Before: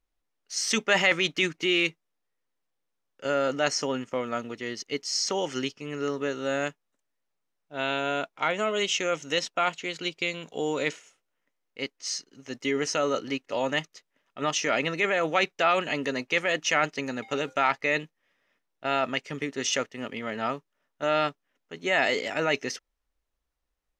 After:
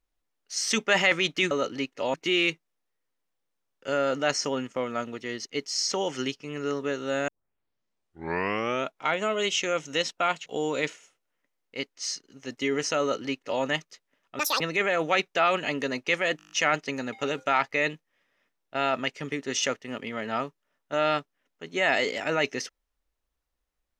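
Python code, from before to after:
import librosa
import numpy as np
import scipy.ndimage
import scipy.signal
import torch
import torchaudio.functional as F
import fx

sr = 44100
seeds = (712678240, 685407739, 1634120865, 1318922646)

y = fx.edit(x, sr, fx.tape_start(start_s=6.65, length_s=1.65),
    fx.cut(start_s=9.83, length_s=0.66),
    fx.duplicate(start_s=13.03, length_s=0.63, to_s=1.51),
    fx.speed_span(start_s=14.42, length_s=0.42, speed=1.98),
    fx.stutter(start_s=16.61, slice_s=0.02, count=8), tone=tone)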